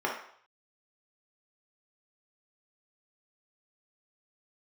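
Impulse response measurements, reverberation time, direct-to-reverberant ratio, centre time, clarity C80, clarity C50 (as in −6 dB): 0.60 s, −3.0 dB, 33 ms, 9.0 dB, 4.5 dB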